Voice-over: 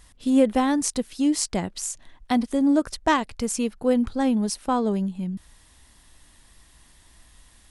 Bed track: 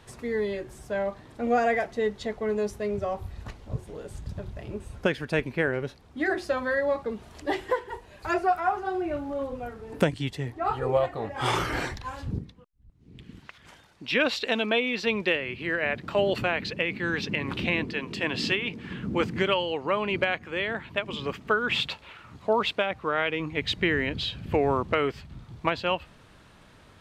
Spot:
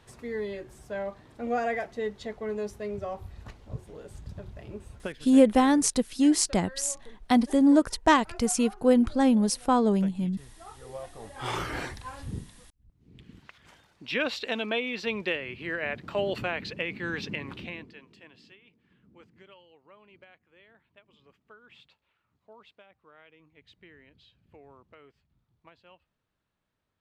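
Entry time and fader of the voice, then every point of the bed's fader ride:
5.00 s, +0.5 dB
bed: 4.92 s -5 dB
5.30 s -20 dB
10.79 s -20 dB
11.61 s -4.5 dB
17.31 s -4.5 dB
18.48 s -29 dB

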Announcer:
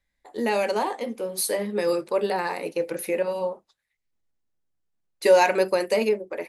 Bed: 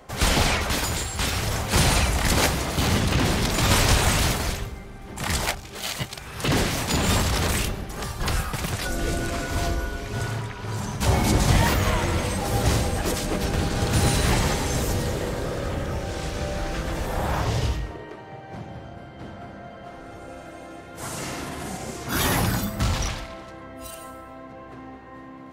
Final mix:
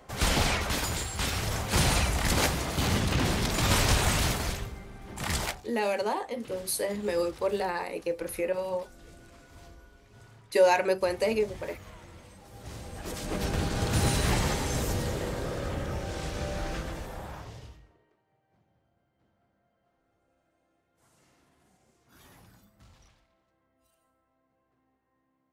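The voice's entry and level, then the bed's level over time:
5.30 s, -4.5 dB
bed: 5.42 s -5 dB
5.95 s -25.5 dB
12.53 s -25.5 dB
13.40 s -5 dB
16.73 s -5 dB
18.22 s -33.5 dB

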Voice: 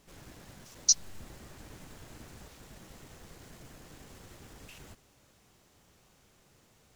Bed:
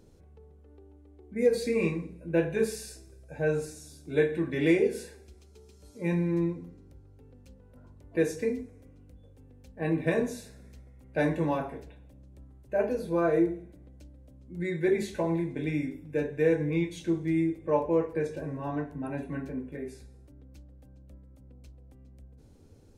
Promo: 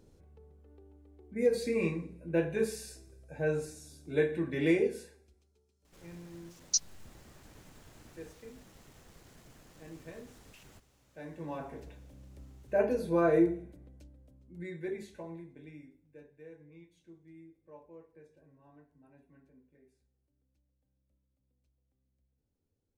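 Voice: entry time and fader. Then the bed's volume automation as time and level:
5.85 s, -5.5 dB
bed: 4.82 s -3.5 dB
5.71 s -21 dB
11.18 s -21 dB
11.88 s -0.5 dB
13.65 s -0.5 dB
16.46 s -27 dB

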